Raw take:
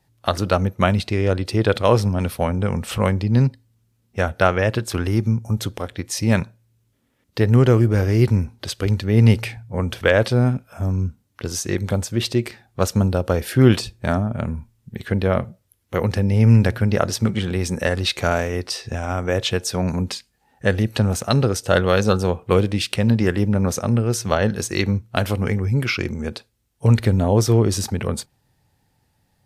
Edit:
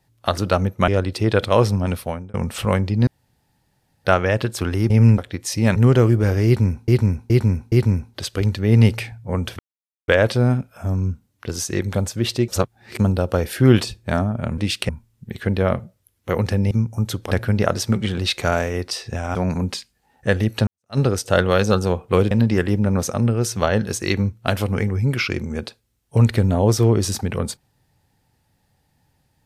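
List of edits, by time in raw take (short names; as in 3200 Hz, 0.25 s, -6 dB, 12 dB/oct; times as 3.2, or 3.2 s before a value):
0.88–1.21 cut
2.24–2.67 fade out
3.4–4.38 room tone
5.23–5.83 swap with 16.36–16.64
6.41–7.47 cut
8.17–8.59 loop, 4 plays
10.04 insert silence 0.49 s
12.44–12.95 reverse
17.52–17.98 cut
19.14–19.73 cut
21.05–21.36 fade in exponential
22.69–23 move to 14.54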